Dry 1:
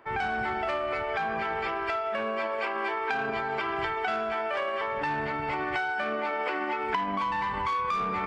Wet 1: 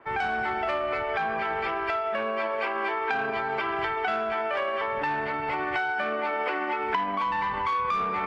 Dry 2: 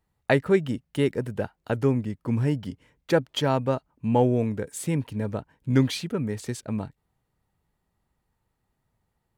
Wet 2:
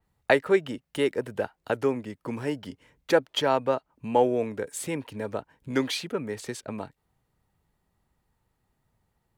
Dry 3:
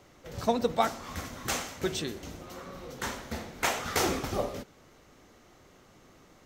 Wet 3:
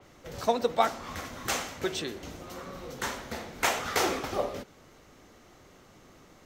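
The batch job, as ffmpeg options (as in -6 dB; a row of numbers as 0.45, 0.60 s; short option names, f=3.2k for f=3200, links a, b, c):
-filter_complex "[0:a]acrossover=split=310|1600[a][b][c];[a]acompressor=threshold=-44dB:ratio=5[d];[d][b][c]amix=inputs=3:normalize=0,adynamicequalizer=threshold=0.00316:dfrequency=4800:dqfactor=0.7:tfrequency=4800:tqfactor=0.7:attack=5:release=100:ratio=0.375:range=3.5:mode=cutabove:tftype=highshelf,volume=2dB"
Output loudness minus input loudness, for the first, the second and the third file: +2.0, -2.0, +0.5 LU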